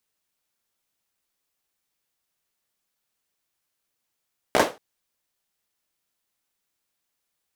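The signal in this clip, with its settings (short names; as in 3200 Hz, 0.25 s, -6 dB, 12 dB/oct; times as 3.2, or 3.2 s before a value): hand clap length 0.23 s, apart 15 ms, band 520 Hz, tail 0.26 s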